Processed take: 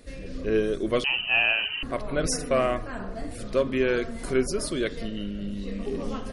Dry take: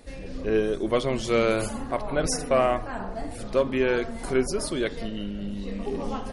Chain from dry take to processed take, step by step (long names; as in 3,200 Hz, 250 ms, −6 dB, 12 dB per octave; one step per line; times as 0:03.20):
parametric band 840 Hz −11 dB 0.4 octaves
0:01.04–0:01.83: voice inversion scrambler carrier 3,000 Hz